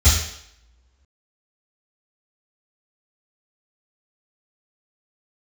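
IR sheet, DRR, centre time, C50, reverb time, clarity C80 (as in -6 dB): -16.0 dB, 52 ms, 2.0 dB, 0.75 s, 5.5 dB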